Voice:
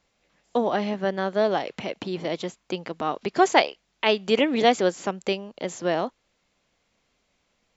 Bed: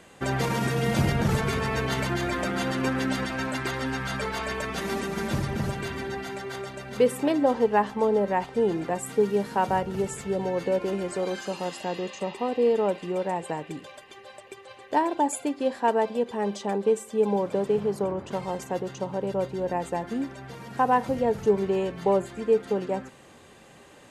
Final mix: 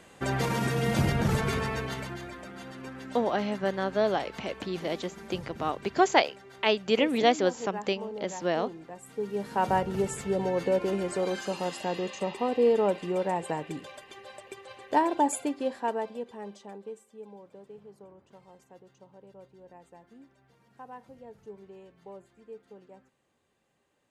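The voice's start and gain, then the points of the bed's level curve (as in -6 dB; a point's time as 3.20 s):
2.60 s, -3.5 dB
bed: 1.58 s -2 dB
2.41 s -15.5 dB
8.98 s -15.5 dB
9.69 s -0.5 dB
15.32 s -0.5 dB
17.34 s -23.5 dB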